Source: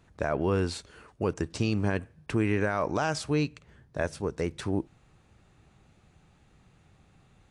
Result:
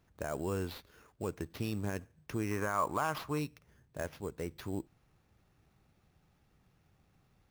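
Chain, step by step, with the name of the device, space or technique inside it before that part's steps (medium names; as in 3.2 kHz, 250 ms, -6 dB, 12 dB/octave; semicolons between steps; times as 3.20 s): early companding sampler (sample-rate reducer 8.1 kHz, jitter 0%; companded quantiser 8-bit); 2.51–3.39 s: peaking EQ 1.1 kHz +12.5 dB 0.59 oct; trim -9 dB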